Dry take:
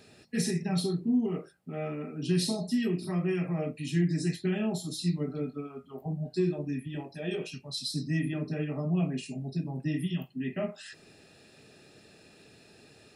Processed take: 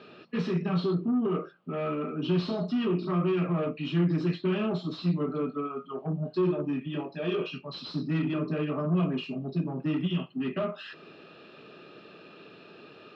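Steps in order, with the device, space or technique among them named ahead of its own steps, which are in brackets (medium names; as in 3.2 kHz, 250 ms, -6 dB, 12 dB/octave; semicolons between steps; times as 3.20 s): overdrive pedal into a guitar cabinet (overdrive pedal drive 22 dB, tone 1.1 kHz, clips at -16.5 dBFS; cabinet simulation 110–4300 Hz, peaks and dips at 170 Hz +5 dB, 340 Hz +3 dB, 780 Hz -7 dB, 1.2 kHz +9 dB, 1.9 kHz -8 dB, 3 kHz +6 dB); trim -3 dB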